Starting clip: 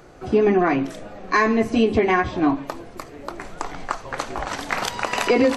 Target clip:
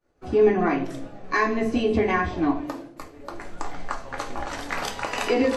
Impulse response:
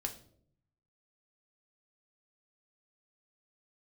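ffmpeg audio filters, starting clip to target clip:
-filter_complex "[0:a]asettb=1/sr,asplit=3[s0][s1][s2];[s0]atrim=end=2.584[s3];[s1]atrim=start=2.58:end=2.99,asetpts=PTS-STARTPTS,afade=t=in:d=0.004:c=qsin,afade=t=out:st=0.406:d=0.004:c=qsin,highpass=f=180:w=0.5412,highpass=f=180:w=1.3066[s4];[s2]atrim=start=2.986[s5];[s3][s4]acrossfade=d=0.004:c1=hsin:c2=qsin[s6];[s6][s5]acrossfade=d=0.004:c1=qsin:c2=hsin,agate=range=0.0224:threshold=0.02:ratio=3:detection=peak[s7];[1:a]atrim=start_sample=2205[s8];[s7][s8]afir=irnorm=-1:irlink=0,volume=0.631"

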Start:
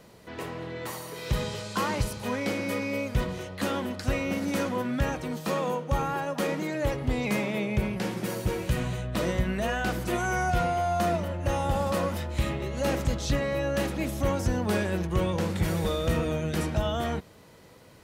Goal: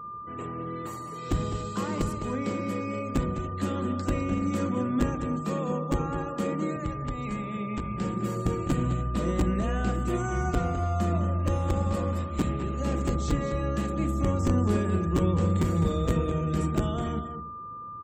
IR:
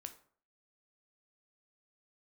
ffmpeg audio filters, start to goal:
-filter_complex "[0:a]acrossover=split=300[s0][s1];[s0]aeval=exprs='(mod(8.41*val(0)+1,2)-1)/8.41':c=same[s2];[s2][s1]amix=inputs=2:normalize=0,asettb=1/sr,asplit=3[s3][s4][s5];[s3]atrim=end=6.764[s6];[s4]atrim=start=6.76:end=7.98,asetpts=PTS-STARTPTS,afade=t=in:d=0.004:c=qsin,afade=t=out:st=1.216:d=0.004:c=qsin,acrossover=split=170|700|7000[s7][s8][s9][s10];[s7]acompressor=threshold=0.0224:ratio=4[s11];[s8]acompressor=threshold=0.00794:ratio=4[s12];[s9]acompressor=threshold=0.0178:ratio=4[s13];[s10]acompressor=threshold=0.00282:ratio=4[s14];[s11][s12][s13][s14]amix=inputs=4:normalize=0[s15];[s5]atrim=start=7.976[s16];[s6][s15]acrossfade=d=0.004:c1=hsin:c2=qsin[s17];[s17][s16]acrossfade=d=0.004:c1=qsin:c2=hsin,aeval=exprs='val(0)+0.0355*sin(2*PI*1200*n/s)':c=same,asplit=2[s18][s19];[s19]firequalizer=gain_entry='entry(120,0);entry(180,5);entry(380,6);entry(850,-8);entry(4200,-28);entry(7500,9);entry(13000,-29)':delay=0.05:min_phase=1[s20];[1:a]atrim=start_sample=2205,asetrate=32634,aresample=44100[s21];[s20][s21]afir=irnorm=-1:irlink=0,volume=1.26[s22];[s18][s22]amix=inputs=2:normalize=0,asplit=3[s23][s24][s25];[s23]afade=t=out:st=11.38:d=0.02[s26];[s24]aeval=exprs='sgn(val(0))*max(abs(val(0))-0.0106,0)':c=same,afade=t=in:st=11.38:d=0.02,afade=t=out:st=13.08:d=0.02[s27];[s25]afade=t=in:st=13.08:d=0.02[s28];[s26][s27][s28]amix=inputs=3:normalize=0,equalizer=f=91:w=0.81:g=9,aecho=1:1:207|290:0.335|0.119,afftfilt=real='re*gte(hypot(re,im),0.00891)':imag='im*gte(hypot(re,im),0.00891)':win_size=1024:overlap=0.75,bandreject=f=80.76:t=h:w=4,bandreject=f=161.52:t=h:w=4,bandreject=f=242.28:t=h:w=4,bandreject=f=323.04:t=h:w=4,bandreject=f=403.8:t=h:w=4,bandreject=f=484.56:t=h:w=4,bandreject=f=565.32:t=h:w=4,bandreject=f=646.08:t=h:w=4,bandreject=f=726.84:t=h:w=4,bandreject=f=807.6:t=h:w=4,bandreject=f=888.36:t=h:w=4,bandreject=f=969.12:t=h:w=4,bandreject=f=1049.88:t=h:w=4,bandreject=f=1130.64:t=h:w=4,bandreject=f=1211.4:t=h:w=4,bandreject=f=1292.16:t=h:w=4,bandreject=f=1372.92:t=h:w=4,bandreject=f=1453.68:t=h:w=4,bandreject=f=1534.44:t=h:w=4,bandreject=f=1615.2:t=h:w=4,volume=0.376"

